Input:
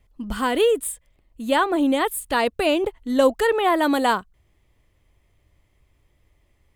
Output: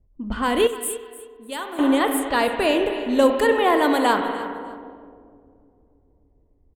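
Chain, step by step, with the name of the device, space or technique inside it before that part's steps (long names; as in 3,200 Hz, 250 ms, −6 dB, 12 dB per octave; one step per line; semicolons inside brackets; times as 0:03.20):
dub delay into a spring reverb (feedback echo with a low-pass in the loop 295 ms, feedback 63%, low-pass 2,000 Hz, level −20.5 dB; spring reverb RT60 2.6 s, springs 33/52 ms, chirp 50 ms, DRR 4.5 dB)
low-pass that shuts in the quiet parts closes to 430 Hz, open at −18 dBFS
0:00.67–0:01.79: first-order pre-emphasis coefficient 0.8
repeating echo 302 ms, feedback 23%, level −17 dB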